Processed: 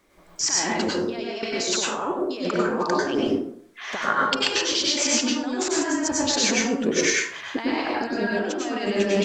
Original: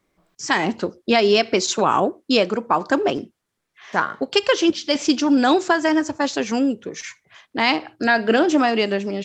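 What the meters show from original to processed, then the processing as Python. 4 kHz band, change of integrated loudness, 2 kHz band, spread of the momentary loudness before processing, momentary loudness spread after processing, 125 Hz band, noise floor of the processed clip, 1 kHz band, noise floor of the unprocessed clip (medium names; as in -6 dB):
-0.5 dB, -4.0 dB, -3.5 dB, 9 LU, 8 LU, -1.5 dB, -50 dBFS, -6.5 dB, -77 dBFS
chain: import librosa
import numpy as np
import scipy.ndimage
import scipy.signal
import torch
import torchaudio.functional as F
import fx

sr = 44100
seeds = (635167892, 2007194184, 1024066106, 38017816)

y = fx.peak_eq(x, sr, hz=120.0, db=-8.0, octaves=1.6)
y = fx.over_compress(y, sr, threshold_db=-30.0, ratio=-1.0)
y = fx.rev_plate(y, sr, seeds[0], rt60_s=0.63, hf_ratio=0.55, predelay_ms=85, drr_db=-4.0)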